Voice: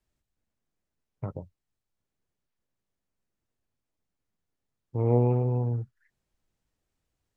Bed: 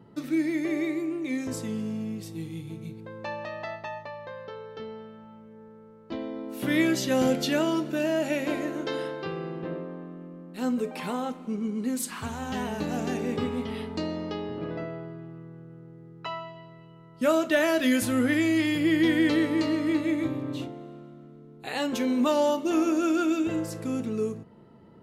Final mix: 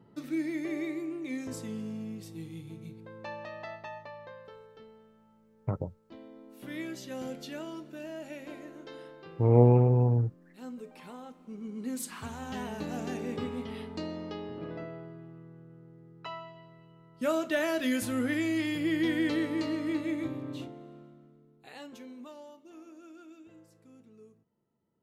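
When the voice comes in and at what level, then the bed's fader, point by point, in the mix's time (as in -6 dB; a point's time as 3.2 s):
4.45 s, +3.0 dB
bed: 4.22 s -6 dB
4.92 s -15 dB
11.33 s -15 dB
11.93 s -6 dB
21.02 s -6 dB
22.49 s -26.5 dB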